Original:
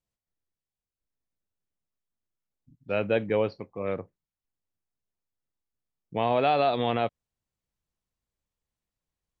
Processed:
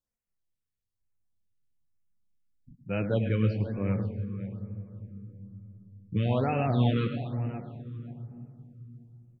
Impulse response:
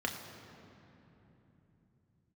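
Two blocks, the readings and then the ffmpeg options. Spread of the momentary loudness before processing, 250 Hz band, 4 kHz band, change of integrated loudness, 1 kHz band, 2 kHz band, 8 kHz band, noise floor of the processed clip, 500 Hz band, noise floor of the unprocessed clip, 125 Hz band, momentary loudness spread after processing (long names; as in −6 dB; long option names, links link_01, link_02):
11 LU, +4.5 dB, −6.0 dB, −2.5 dB, −8.5 dB, −5.0 dB, can't be measured, −85 dBFS, −6.0 dB, below −85 dBFS, +12.0 dB, 21 LU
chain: -filter_complex "[0:a]asubboost=boost=7.5:cutoff=210,flanger=delay=3.4:depth=7.1:regen=42:speed=0.4:shape=triangular,asplit=2[link_01][link_02];[link_02]adelay=531,lowpass=frequency=3600:poles=1,volume=-12dB,asplit=2[link_03][link_04];[link_04]adelay=531,lowpass=frequency=3600:poles=1,volume=0.19[link_05];[link_01][link_03][link_05]amix=inputs=3:normalize=0,asplit=2[link_06][link_07];[1:a]atrim=start_sample=2205,adelay=104[link_08];[link_07][link_08]afir=irnorm=-1:irlink=0,volume=-13dB[link_09];[link_06][link_09]amix=inputs=2:normalize=0,afftfilt=real='re*(1-between(b*sr/1024,720*pow(4300/720,0.5+0.5*sin(2*PI*1.1*pts/sr))/1.41,720*pow(4300/720,0.5+0.5*sin(2*PI*1.1*pts/sr))*1.41))':imag='im*(1-between(b*sr/1024,720*pow(4300/720,0.5+0.5*sin(2*PI*1.1*pts/sr))/1.41,720*pow(4300/720,0.5+0.5*sin(2*PI*1.1*pts/sr))*1.41))':win_size=1024:overlap=0.75"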